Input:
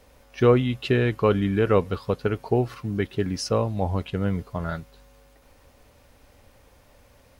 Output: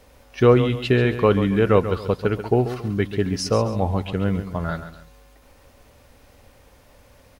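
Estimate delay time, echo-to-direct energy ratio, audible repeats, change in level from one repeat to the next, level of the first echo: 137 ms, −10.5 dB, 2, −9.5 dB, −11.0 dB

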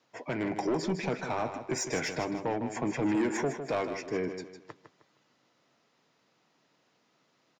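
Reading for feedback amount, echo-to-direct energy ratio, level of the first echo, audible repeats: 33%, −8.5 dB, −9.0 dB, 3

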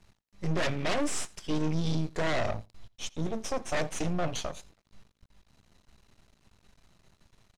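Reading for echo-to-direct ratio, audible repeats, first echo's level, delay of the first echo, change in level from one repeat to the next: −23.5 dB, 1, −23.5 dB, 85 ms, repeats not evenly spaced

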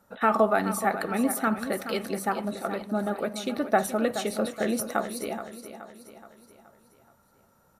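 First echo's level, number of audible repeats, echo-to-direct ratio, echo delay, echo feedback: −11.0 dB, 4, −10.0 dB, 424 ms, 49%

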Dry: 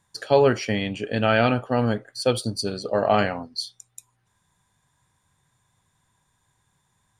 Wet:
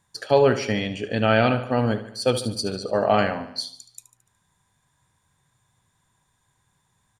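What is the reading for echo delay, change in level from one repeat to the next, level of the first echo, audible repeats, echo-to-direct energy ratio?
73 ms, −5.5 dB, −13.0 dB, 4, −11.5 dB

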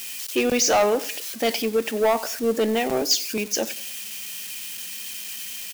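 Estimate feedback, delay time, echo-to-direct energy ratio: 38%, 94 ms, −19.5 dB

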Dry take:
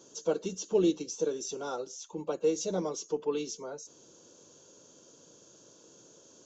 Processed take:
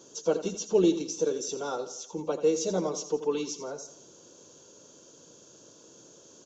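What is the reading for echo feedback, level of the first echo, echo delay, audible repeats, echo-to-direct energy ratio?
45%, −12.0 dB, 84 ms, 4, −11.0 dB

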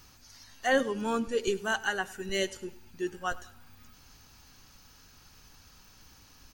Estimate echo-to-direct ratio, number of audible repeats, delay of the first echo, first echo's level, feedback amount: −19.0 dB, 2, 100 ms, −20.0 dB, 41%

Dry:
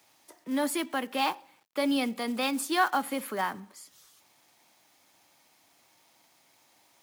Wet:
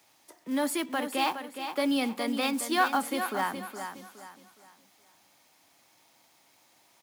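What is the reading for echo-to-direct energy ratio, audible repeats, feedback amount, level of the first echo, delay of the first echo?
−8.0 dB, 3, 33%, −8.5 dB, 416 ms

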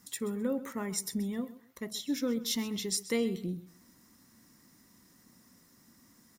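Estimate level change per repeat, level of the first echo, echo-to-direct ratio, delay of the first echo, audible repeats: −13.0 dB, −16.5 dB, −16.5 dB, 130 ms, 2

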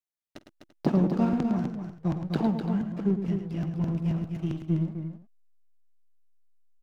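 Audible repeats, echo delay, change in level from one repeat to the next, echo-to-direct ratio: 4, 50 ms, repeats not evenly spaced, −4.5 dB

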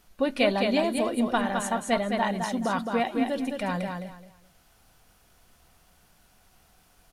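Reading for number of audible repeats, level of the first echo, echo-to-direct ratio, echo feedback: 3, −5.0 dB, −5.0 dB, 23%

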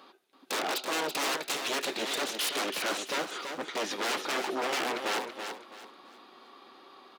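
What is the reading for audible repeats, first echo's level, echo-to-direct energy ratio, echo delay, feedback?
3, −7.0 dB, −6.5 dB, 331 ms, 29%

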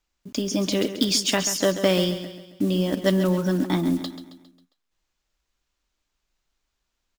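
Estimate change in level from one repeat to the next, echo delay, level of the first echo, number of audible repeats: −6.5 dB, 135 ms, −11.0 dB, 4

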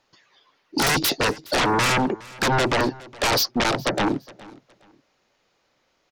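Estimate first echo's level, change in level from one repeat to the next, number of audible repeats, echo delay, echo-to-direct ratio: −21.5 dB, −12.0 dB, 2, 415 ms, −21.0 dB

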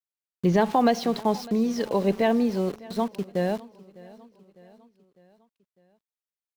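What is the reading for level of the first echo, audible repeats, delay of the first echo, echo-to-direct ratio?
−21.5 dB, 3, 603 ms, −20.0 dB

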